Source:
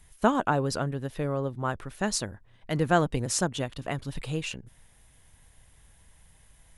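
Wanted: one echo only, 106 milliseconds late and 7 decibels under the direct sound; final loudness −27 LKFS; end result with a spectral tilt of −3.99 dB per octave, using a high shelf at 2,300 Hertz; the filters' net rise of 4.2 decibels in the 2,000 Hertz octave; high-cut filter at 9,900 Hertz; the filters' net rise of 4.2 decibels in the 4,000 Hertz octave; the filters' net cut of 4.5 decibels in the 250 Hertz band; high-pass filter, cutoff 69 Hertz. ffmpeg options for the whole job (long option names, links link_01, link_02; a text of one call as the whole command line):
ffmpeg -i in.wav -af "highpass=69,lowpass=9900,equalizer=frequency=250:width_type=o:gain=-6.5,equalizer=frequency=2000:width_type=o:gain=6.5,highshelf=frequency=2300:gain=-4.5,equalizer=frequency=4000:width_type=o:gain=8.5,aecho=1:1:106:0.447,volume=2dB" out.wav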